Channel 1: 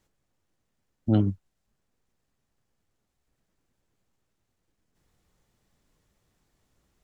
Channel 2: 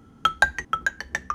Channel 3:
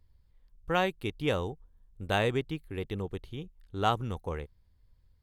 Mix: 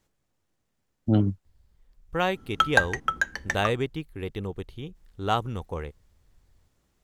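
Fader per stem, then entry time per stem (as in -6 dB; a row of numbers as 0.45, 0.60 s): +0.5, -1.0, +2.0 dB; 0.00, 2.35, 1.45 s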